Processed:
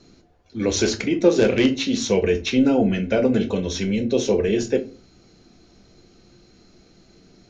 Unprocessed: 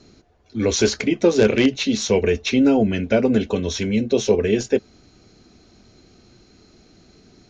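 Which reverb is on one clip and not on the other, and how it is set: simulated room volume 160 m³, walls furnished, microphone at 0.79 m; trim -2.5 dB

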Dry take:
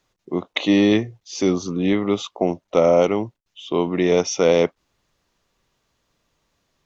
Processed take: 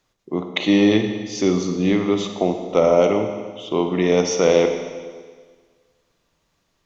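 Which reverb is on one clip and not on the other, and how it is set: Schroeder reverb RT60 1.6 s, DRR 5.5 dB

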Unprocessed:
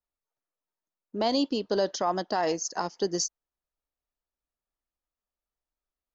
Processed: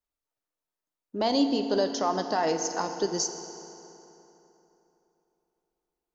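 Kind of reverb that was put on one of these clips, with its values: FDN reverb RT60 3.3 s, high-frequency decay 0.7×, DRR 6.5 dB

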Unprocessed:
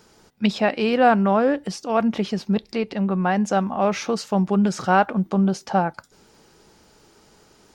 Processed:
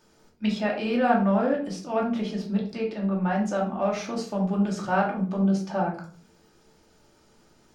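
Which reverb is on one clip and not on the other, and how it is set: simulated room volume 420 m³, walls furnished, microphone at 2.6 m; trim -10.5 dB

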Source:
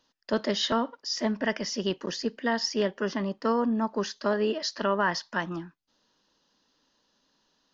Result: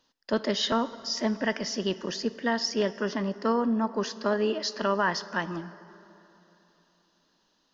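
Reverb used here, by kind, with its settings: plate-style reverb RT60 3.4 s, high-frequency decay 0.6×, DRR 15 dB

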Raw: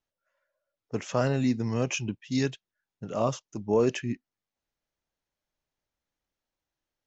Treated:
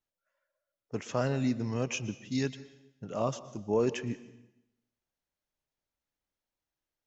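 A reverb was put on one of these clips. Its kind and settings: plate-style reverb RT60 0.91 s, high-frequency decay 0.95×, pre-delay 105 ms, DRR 15.5 dB; trim -4 dB

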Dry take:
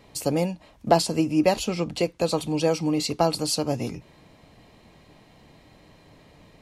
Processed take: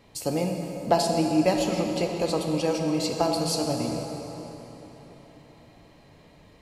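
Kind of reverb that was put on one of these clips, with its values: plate-style reverb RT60 4.3 s, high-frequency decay 0.65×, DRR 2 dB; trim -3.5 dB

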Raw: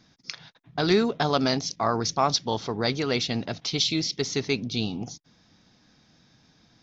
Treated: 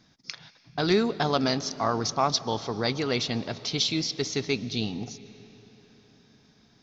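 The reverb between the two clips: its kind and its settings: algorithmic reverb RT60 4.5 s, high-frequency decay 0.75×, pre-delay 90 ms, DRR 16 dB; trim -1.5 dB

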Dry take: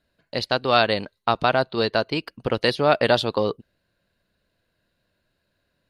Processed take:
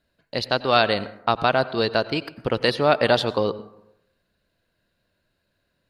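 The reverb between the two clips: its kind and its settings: plate-style reverb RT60 0.8 s, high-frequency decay 0.4×, pre-delay 80 ms, DRR 15.5 dB

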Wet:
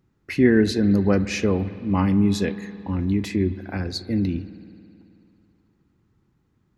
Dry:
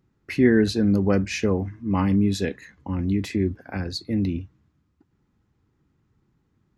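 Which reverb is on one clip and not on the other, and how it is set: spring tank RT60 2.7 s, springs 54 ms, chirp 20 ms, DRR 14 dB; trim +1 dB

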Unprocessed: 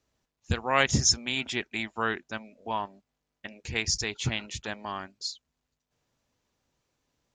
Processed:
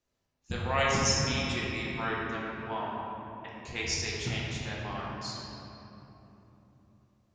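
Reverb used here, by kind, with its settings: simulated room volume 190 m³, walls hard, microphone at 0.87 m; trim -8 dB

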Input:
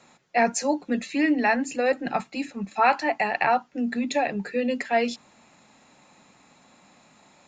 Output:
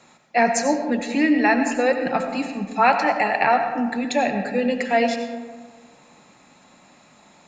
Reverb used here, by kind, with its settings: algorithmic reverb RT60 1.6 s, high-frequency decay 0.4×, pre-delay 50 ms, DRR 6 dB; trim +3 dB

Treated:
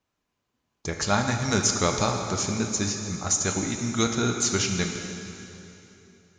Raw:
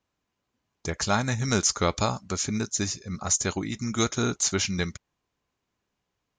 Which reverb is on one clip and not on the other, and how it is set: plate-style reverb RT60 3.1 s, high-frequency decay 0.9×, DRR 3.5 dB

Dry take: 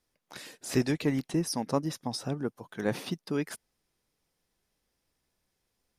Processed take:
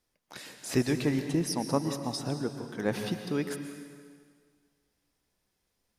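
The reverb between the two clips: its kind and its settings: plate-style reverb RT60 1.8 s, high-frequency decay 0.95×, pre-delay 105 ms, DRR 7 dB

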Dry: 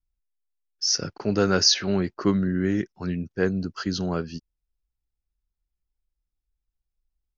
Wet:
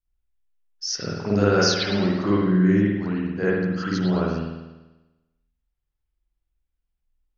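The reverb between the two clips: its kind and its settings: spring tank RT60 1.1 s, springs 49 ms, chirp 70 ms, DRR -8.5 dB; trim -5 dB

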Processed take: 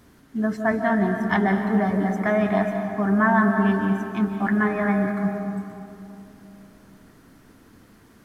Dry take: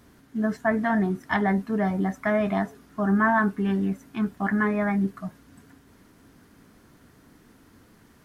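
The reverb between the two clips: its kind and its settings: algorithmic reverb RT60 3 s, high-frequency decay 0.4×, pre-delay 110 ms, DRR 4.5 dB; trim +1.5 dB

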